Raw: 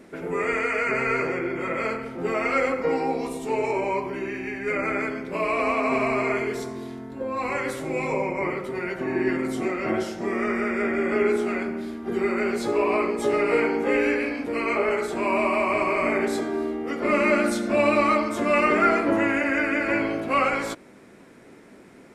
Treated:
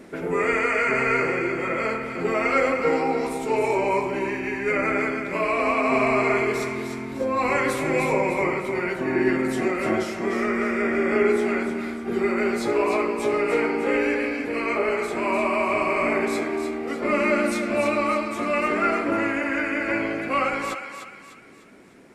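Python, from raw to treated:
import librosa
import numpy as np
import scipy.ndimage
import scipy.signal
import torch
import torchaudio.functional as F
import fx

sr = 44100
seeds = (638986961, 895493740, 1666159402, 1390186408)

y = fx.rider(x, sr, range_db=10, speed_s=2.0)
y = fx.echo_thinned(y, sr, ms=301, feedback_pct=45, hz=870.0, wet_db=-6.5)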